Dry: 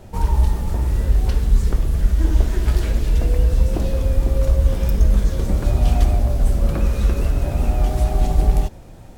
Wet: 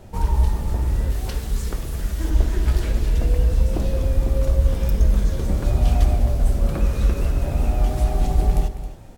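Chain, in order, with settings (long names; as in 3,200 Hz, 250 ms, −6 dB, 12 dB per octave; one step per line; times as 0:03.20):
0:01.10–0:02.30: spectral tilt +1.5 dB per octave
multi-tap delay 201/269 ms −15.5/−14.5 dB
level −2 dB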